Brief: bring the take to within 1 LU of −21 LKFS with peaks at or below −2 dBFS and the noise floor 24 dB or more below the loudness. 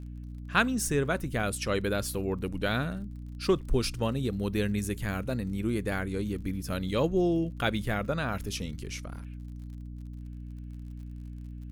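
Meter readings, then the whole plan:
crackle rate 49 per second; mains hum 60 Hz; hum harmonics up to 300 Hz; level of the hum −38 dBFS; integrated loudness −30.5 LKFS; sample peak −9.5 dBFS; target loudness −21.0 LKFS
→ click removal
hum removal 60 Hz, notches 5
level +9.5 dB
brickwall limiter −2 dBFS

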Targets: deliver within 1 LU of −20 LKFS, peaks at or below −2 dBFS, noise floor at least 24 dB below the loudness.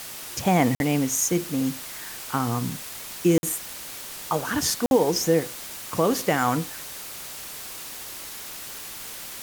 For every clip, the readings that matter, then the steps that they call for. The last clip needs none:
number of dropouts 3; longest dropout 51 ms; background noise floor −38 dBFS; target noise floor −50 dBFS; integrated loudness −26.0 LKFS; sample peak −8.0 dBFS; target loudness −20.0 LKFS
→ repair the gap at 0:00.75/0:03.38/0:04.86, 51 ms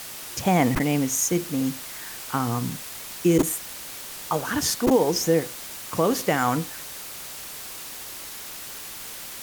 number of dropouts 0; background noise floor −38 dBFS; target noise floor −50 dBFS
→ noise reduction from a noise print 12 dB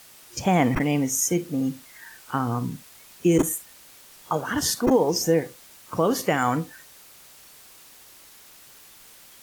background noise floor −50 dBFS; integrated loudness −24.0 LKFS; sample peak −8.5 dBFS; target loudness −20.0 LKFS
→ level +4 dB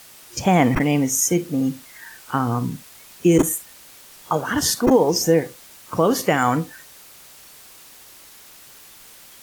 integrated loudness −20.0 LKFS; sample peak −4.5 dBFS; background noise floor −46 dBFS

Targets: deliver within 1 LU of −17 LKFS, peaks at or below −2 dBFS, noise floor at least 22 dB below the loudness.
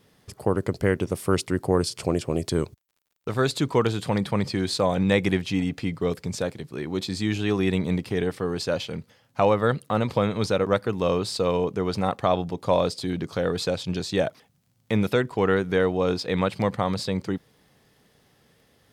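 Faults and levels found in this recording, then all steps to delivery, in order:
crackle rate 33 per second; integrated loudness −25.5 LKFS; sample peak −8.0 dBFS; target loudness −17.0 LKFS
→ click removal
level +8.5 dB
brickwall limiter −2 dBFS

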